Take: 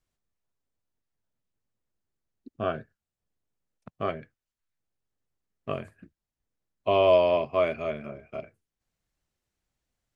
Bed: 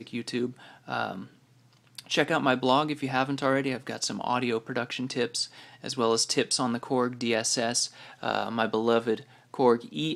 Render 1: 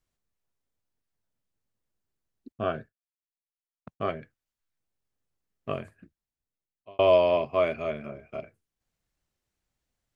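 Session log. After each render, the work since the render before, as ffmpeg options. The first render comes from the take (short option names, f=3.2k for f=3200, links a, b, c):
-filter_complex "[0:a]asettb=1/sr,asplit=3[a][b][c];[a]atrim=end=2.524[d];[b]atrim=start=2.52:end=4.1,asetpts=PTS-STARTPTS,afade=t=in:d=0.004:c=qsin,afade=t=out:st=1.576:d=0.004:c=qsin,agate=range=-33dB:threshold=-57dB:ratio=3:release=100:detection=peak[e];[c]atrim=start=4.096[f];[d][e]acrossfade=d=0.004:c1=hsin:c2=qsin[g];[g][f]acrossfade=d=0.004:c1=qsin:c2=hsin,asplit=2[h][i];[h]atrim=end=6.99,asetpts=PTS-STARTPTS,afade=t=out:st=5.76:d=1.23[j];[i]atrim=start=6.99,asetpts=PTS-STARTPTS,afade=t=in:d=0.004:c=hsin[k];[j][k]concat=n=2:v=0:a=1"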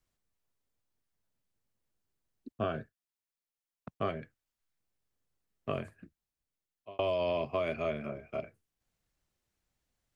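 -filter_complex "[0:a]alimiter=limit=-17.5dB:level=0:latency=1:release=64,acrossover=split=240|3000[a][b][c];[b]acompressor=threshold=-29dB:ratio=6[d];[a][d][c]amix=inputs=3:normalize=0"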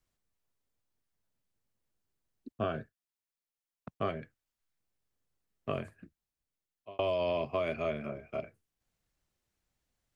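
-af anull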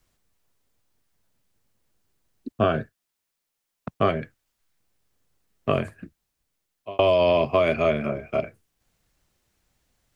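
-af "volume=12dB"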